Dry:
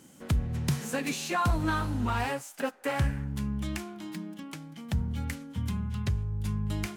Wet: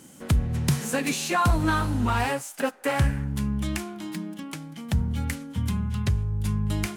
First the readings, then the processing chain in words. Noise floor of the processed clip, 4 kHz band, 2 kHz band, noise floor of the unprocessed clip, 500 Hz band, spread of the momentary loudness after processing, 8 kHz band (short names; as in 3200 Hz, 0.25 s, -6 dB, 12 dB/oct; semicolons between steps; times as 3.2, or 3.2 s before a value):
-48 dBFS, +5.0 dB, +5.0 dB, -53 dBFS, +5.0 dB, 11 LU, +7.0 dB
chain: bell 9900 Hz +3.5 dB 0.7 oct; gain +5 dB